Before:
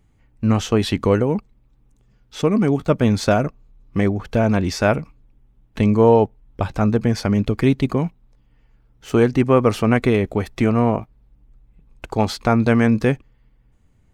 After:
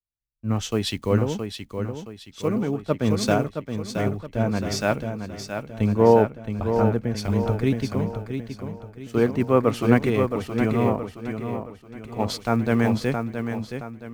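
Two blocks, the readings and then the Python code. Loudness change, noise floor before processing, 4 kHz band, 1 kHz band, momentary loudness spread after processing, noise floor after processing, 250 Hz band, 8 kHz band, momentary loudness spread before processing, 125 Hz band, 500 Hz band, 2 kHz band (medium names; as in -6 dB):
-5.0 dB, -58 dBFS, -2.0 dB, -3.5 dB, 13 LU, -49 dBFS, -5.0 dB, -1.0 dB, 9 LU, -4.5 dB, -3.5 dB, -4.5 dB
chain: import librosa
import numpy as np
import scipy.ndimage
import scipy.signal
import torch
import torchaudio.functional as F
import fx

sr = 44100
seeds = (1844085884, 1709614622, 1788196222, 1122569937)

y = fx.block_float(x, sr, bits=7)
y = fx.echo_feedback(y, sr, ms=671, feedback_pct=60, wet_db=-4.0)
y = fx.band_widen(y, sr, depth_pct=100)
y = y * 10.0 ** (-6.5 / 20.0)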